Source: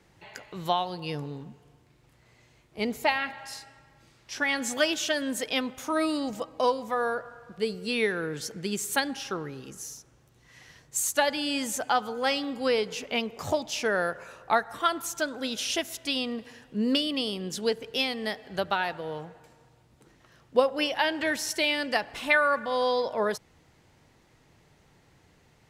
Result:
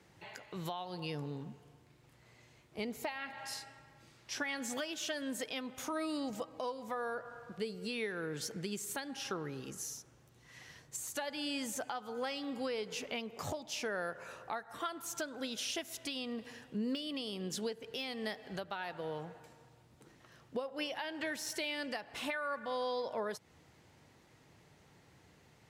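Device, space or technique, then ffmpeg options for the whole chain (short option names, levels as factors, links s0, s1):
podcast mastering chain: -af "highpass=69,deesser=0.6,acompressor=threshold=0.0178:ratio=2.5,alimiter=level_in=1.19:limit=0.0631:level=0:latency=1:release=288,volume=0.841,volume=0.841" -ar 44100 -c:a libmp3lame -b:a 96k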